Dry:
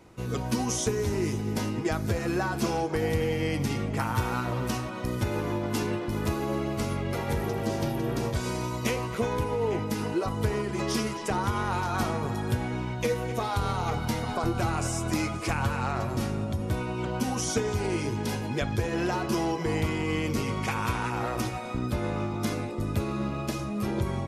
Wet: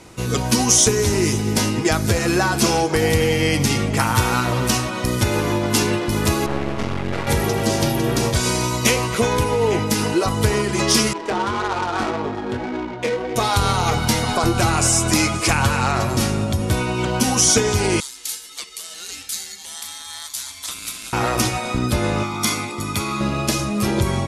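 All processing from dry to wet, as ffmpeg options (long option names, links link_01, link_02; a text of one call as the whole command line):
ffmpeg -i in.wav -filter_complex "[0:a]asettb=1/sr,asplit=3[link_01][link_02][link_03];[link_01]atrim=end=6.464[link_04];[link_02]atrim=start=6.46:end=7.27,asetpts=PTS-STARTPTS,afade=type=in:duration=0.004:curve=qsin,afade=type=out:start_time=0.806:duration=0.004:curve=qsin,lowpass=2600,aeval=exprs='max(val(0),0)':channel_layout=same[link_05];[link_03]atrim=start=7.266[link_06];[link_04][link_05]acrossfade=duration=0.004:curve1=hsin:curve2=qsin[link_07];[link_07][link_06]acrossfade=duration=0.004:curve1=qsin:curve2=hsin,asettb=1/sr,asplit=3[link_08][link_09][link_10];[link_08]atrim=end=11.134[link_11];[link_09]atrim=start=11.13:end=13.36,asetpts=PTS-STARTPTS,afade=type=in:duration=0.004:curve=qsin,afade=type=out:start_time=2.226:duration=0.004:curve=qsin,lowshelf=frequency=210:width_type=q:width=1.5:gain=-8.5,flanger=delay=19:depth=4.8:speed=1.8,adynamicsmooth=sensitivity=4.5:basefreq=1000[link_12];[link_10]atrim=start=13.356[link_13];[link_11][link_12]acrossfade=duration=0.004:curve1=hsin:curve2=qsin[link_14];[link_14][link_13]acrossfade=duration=0.004:curve1=qsin:curve2=hsin,asettb=1/sr,asplit=3[link_15][link_16][link_17];[link_15]atrim=end=18.004[link_18];[link_16]atrim=start=18:end=21.13,asetpts=PTS-STARTPTS,afade=type=in:duration=0.004:curve=qsin,afade=type=out:start_time=3.126:duration=0.004:curve=qsin,highpass=980,aderivative,aeval=exprs='val(0)*sin(2*PI*1200*n/s)':channel_layout=same[link_19];[link_17]atrim=start=21.126[link_20];[link_18][link_19]acrossfade=duration=0.004:curve1=hsin:curve2=qsin[link_21];[link_21][link_20]acrossfade=duration=0.004:curve1=qsin:curve2=hsin,asettb=1/sr,asplit=3[link_22][link_23][link_24];[link_22]atrim=end=22.234[link_25];[link_23]atrim=start=22.23:end=23.21,asetpts=PTS-STARTPTS,afade=type=in:duration=0.004:curve=qsin,afade=type=out:start_time=0.976:duration=0.004:curve=qsin,highpass=frequency=140:poles=1,lowshelf=frequency=480:gain=-7,aecho=1:1:0.9:0.57,atrim=end_sample=43218[link_26];[link_24]atrim=start=23.206[link_27];[link_25][link_26]acrossfade=duration=0.004:curve1=hsin:curve2=qsin[link_28];[link_28][link_27]acrossfade=duration=0.004:curve1=qsin:curve2=hsin,lowpass=frequency=12000:width=0.5412,lowpass=frequency=12000:width=1.3066,highshelf=frequency=2700:gain=10.5,acontrast=76,volume=2dB" out.wav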